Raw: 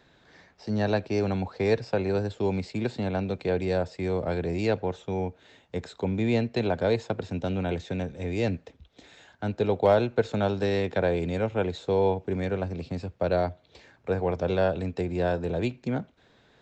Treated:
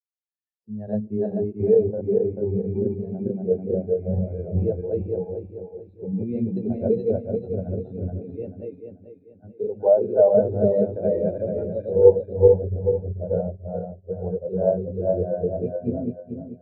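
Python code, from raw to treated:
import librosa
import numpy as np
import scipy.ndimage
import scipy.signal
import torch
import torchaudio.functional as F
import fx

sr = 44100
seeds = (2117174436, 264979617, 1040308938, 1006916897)

y = fx.reverse_delay_fb(x, sr, ms=219, feedback_pct=79, wet_db=0)
y = fx.peak_eq(y, sr, hz=fx.line((1.76, 1800.0), (2.44, 5100.0)), db=-5.5, octaves=0.5, at=(1.76, 2.44), fade=0.02)
y = fx.highpass(y, sr, hz=130.0, slope=6, at=(8.42, 10.33))
y = y + 10.0 ** (-16.5 / 20.0) * np.pad(y, (int(141 * sr / 1000.0), 0))[:len(y)]
y = fx.spectral_expand(y, sr, expansion=2.5)
y = y * librosa.db_to_amplitude(5.0)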